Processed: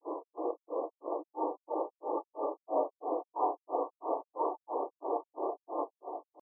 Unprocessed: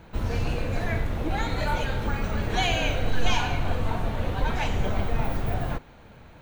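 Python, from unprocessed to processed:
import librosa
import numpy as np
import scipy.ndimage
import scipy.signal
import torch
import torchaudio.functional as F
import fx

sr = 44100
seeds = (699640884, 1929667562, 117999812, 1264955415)

y = fx.brickwall_bandpass(x, sr, low_hz=290.0, high_hz=1200.0)
y = fx.echo_diffused(y, sr, ms=517, feedback_pct=44, wet_db=-8.0)
y = fx.granulator(y, sr, seeds[0], grain_ms=243.0, per_s=3.0, spray_ms=100.0, spread_st=0)
y = y * 10.0 ** (3.5 / 20.0)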